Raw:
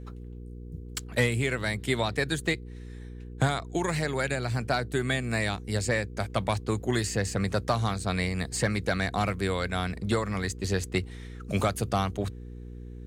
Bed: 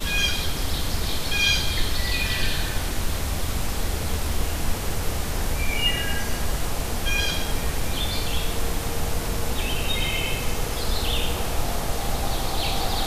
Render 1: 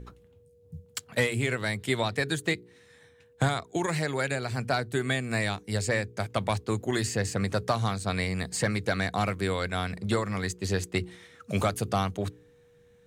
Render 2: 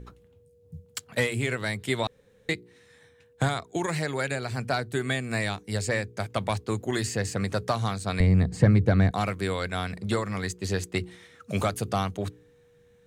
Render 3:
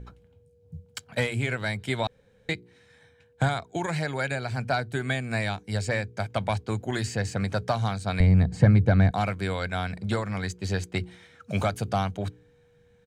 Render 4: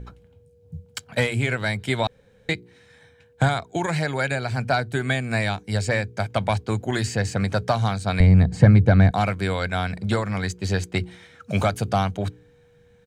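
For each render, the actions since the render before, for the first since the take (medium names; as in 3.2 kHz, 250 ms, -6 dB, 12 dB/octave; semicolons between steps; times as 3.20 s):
de-hum 60 Hz, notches 7
2.07–2.49 s: room tone; 8.20–9.11 s: tilt EQ -4 dB/octave
treble shelf 8.3 kHz -11 dB; comb 1.3 ms, depth 33%
trim +4.5 dB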